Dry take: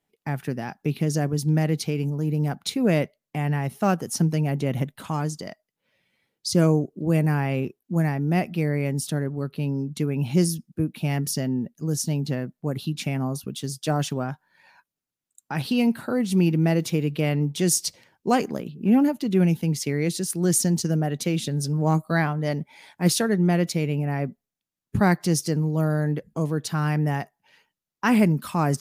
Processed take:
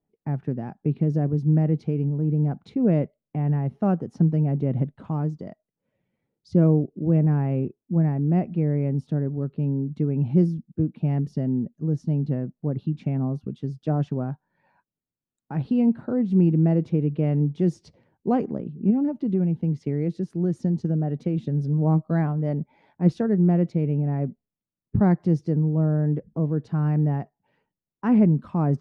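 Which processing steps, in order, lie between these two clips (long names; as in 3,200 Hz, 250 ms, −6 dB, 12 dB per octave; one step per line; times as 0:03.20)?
tilt shelving filter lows +7.5 dB
0:18.90–0:21.38: downward compressor, threshold −14 dBFS, peak gain reduction 6.5 dB
head-to-tape spacing loss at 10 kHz 29 dB
level −4.5 dB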